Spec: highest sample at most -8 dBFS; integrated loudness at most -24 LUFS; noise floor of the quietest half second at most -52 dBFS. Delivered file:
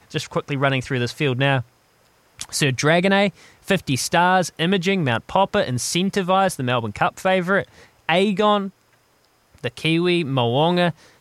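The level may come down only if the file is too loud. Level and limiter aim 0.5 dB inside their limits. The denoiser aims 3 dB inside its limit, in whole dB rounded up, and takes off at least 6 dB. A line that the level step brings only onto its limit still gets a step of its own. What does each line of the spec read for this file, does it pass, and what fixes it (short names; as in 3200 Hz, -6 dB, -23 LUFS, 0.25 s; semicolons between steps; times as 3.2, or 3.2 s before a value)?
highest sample -4.0 dBFS: fail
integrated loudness -20.0 LUFS: fail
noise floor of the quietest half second -60 dBFS: OK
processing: gain -4.5 dB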